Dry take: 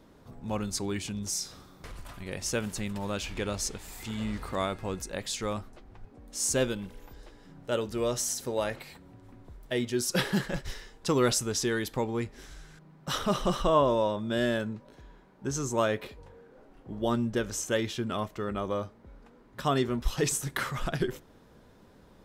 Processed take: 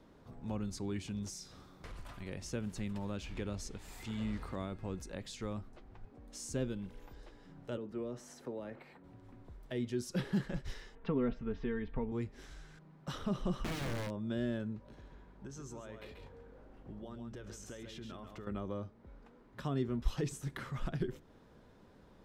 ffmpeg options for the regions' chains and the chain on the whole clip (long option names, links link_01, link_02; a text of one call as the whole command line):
ffmpeg -i in.wav -filter_complex "[0:a]asettb=1/sr,asplit=3[link_01][link_02][link_03];[link_01]atrim=end=7.774[link_04];[link_02]atrim=start=7.77:end=9.04,asetpts=PTS-STARTPTS,afade=type=in:duration=0.004:curve=qsin,afade=type=out:start_time=1.266:duration=0.004:curve=qsin,acrossover=split=410|3000[link_05][link_06][link_07];[link_06]acompressor=threshold=-35dB:ratio=6:attack=3.2:release=140:knee=2.83:detection=peak[link_08];[link_05][link_08][link_07]amix=inputs=3:normalize=0,acrossover=split=160 2200:gain=0.2 1 0.178[link_09][link_10][link_11];[link_09][link_10][link_11]amix=inputs=3:normalize=0[link_12];[link_03]atrim=start=9.036[link_13];[link_04][link_12]acrossfade=duration=0.004:curve1=hsin:curve2=qsin[link_14];[link_14][link_13]acrossfade=duration=0.004:curve1=qsin:curve2=hsin,asettb=1/sr,asplit=3[link_15][link_16][link_17];[link_15]atrim=end=10.954[link_18];[link_16]atrim=start=10.95:end=12.12,asetpts=PTS-STARTPTS,afade=type=in:duration=0.004:curve=qsin,afade=type=out:start_time=1.166:duration=0.004:curve=qsin,lowpass=frequency=2600:width=0.5412,lowpass=frequency=2600:width=1.3066,asubboost=boost=10:cutoff=100,aecho=1:1:4.4:0.67,atrim=end_sample=51597[link_19];[link_17]atrim=start=12.116[link_20];[link_18][link_19]acrossfade=duration=0.004:curve1=hsin:curve2=qsin[link_21];[link_21][link_20]acrossfade=duration=0.004:curve1=qsin:curve2=hsin,asettb=1/sr,asplit=3[link_22][link_23][link_24];[link_22]atrim=end=13.594[link_25];[link_23]atrim=start=13.59:end=14.2,asetpts=PTS-STARTPTS,afade=type=in:duration=0.004:curve=qsin,afade=type=out:start_time=0.606:duration=0.004:curve=qsin,equalizer=frequency=3800:width_type=o:width=0.31:gain=-8.5,aeval=exprs='(mod(11.2*val(0)+1,2)-1)/11.2':channel_layout=same[link_26];[link_24]atrim=start=14.196[link_27];[link_25][link_26]acrossfade=duration=0.004:curve1=hsin:curve2=qsin[link_28];[link_28][link_27]acrossfade=duration=0.004:curve1=qsin:curve2=hsin,asettb=1/sr,asplit=3[link_29][link_30][link_31];[link_29]atrim=end=14.764[link_32];[link_30]atrim=start=14.76:end=18.47,asetpts=PTS-STARTPTS,afade=type=in:duration=0.004:curve=qsin,afade=type=out:start_time=3.706:duration=0.004:curve=qsin,acompressor=threshold=-39dB:ratio=12:attack=3.2:release=140:knee=1:detection=peak,aeval=exprs='val(0)+0.00178*(sin(2*PI*50*n/s)+sin(2*PI*2*50*n/s)/2+sin(2*PI*3*50*n/s)/3+sin(2*PI*4*50*n/s)/4+sin(2*PI*5*50*n/s)/5)':channel_layout=same,aecho=1:1:136:0.447,atrim=end_sample=163611[link_33];[link_31]atrim=start=18.466[link_34];[link_32][link_33]acrossfade=duration=0.004:curve1=hsin:curve2=qsin[link_35];[link_35][link_34]acrossfade=duration=0.004:curve1=qsin:curve2=hsin,highshelf=frequency=7700:gain=-10,acrossover=split=350[link_36][link_37];[link_37]acompressor=threshold=-44dB:ratio=2.5[link_38];[link_36][link_38]amix=inputs=2:normalize=0,volume=-4dB" out.wav